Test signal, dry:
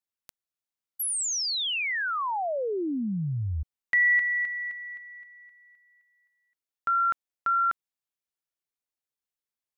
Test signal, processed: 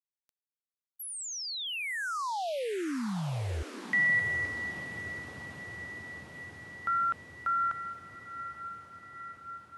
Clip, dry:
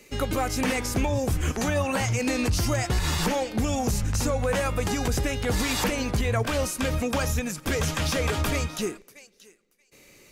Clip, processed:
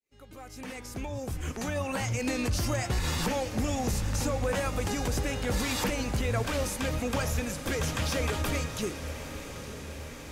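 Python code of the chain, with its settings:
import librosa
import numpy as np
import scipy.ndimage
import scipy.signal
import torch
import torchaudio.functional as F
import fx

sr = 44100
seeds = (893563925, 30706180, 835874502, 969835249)

y = fx.fade_in_head(x, sr, length_s=2.29)
y = fx.echo_diffused(y, sr, ms=902, feedback_pct=69, wet_db=-11.0)
y = y * 10.0 ** (-4.5 / 20.0)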